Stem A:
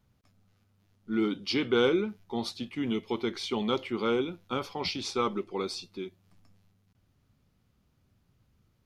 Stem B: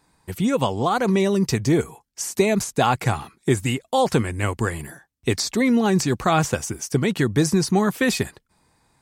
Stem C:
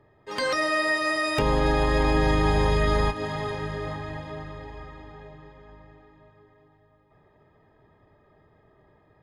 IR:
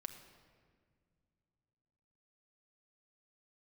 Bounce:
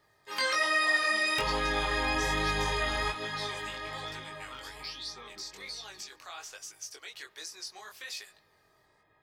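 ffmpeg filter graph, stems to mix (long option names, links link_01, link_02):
-filter_complex "[0:a]equalizer=frequency=4000:width_type=o:width=0.77:gain=7.5,aphaser=in_gain=1:out_gain=1:delay=1.3:decay=0.56:speed=0.38:type=triangular,volume=-12.5dB[link_01];[1:a]highpass=frequency=450:width=0.5412,highpass=frequency=450:width=1.3066,highshelf=frequency=6600:width_type=q:width=1.5:gain=-8.5,volume=-20dB,asplit=2[link_02][link_03];[link_03]volume=-9.5dB[link_04];[2:a]equalizer=frequency=7000:width=0.5:gain=-3.5,volume=-2.5dB[link_05];[link_01][link_02]amix=inputs=2:normalize=0,highshelf=frequency=5500:gain=11,alimiter=level_in=10.5dB:limit=-24dB:level=0:latency=1:release=374,volume=-10.5dB,volume=0dB[link_06];[3:a]atrim=start_sample=2205[link_07];[link_04][link_07]afir=irnorm=-1:irlink=0[link_08];[link_05][link_06][link_08]amix=inputs=3:normalize=0,tiltshelf=frequency=900:gain=-9.5,flanger=delay=18.5:depth=4.5:speed=1.2"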